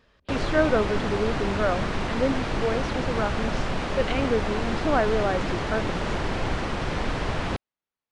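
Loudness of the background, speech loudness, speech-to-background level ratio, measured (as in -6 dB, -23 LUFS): -28.5 LUFS, -28.0 LUFS, 0.5 dB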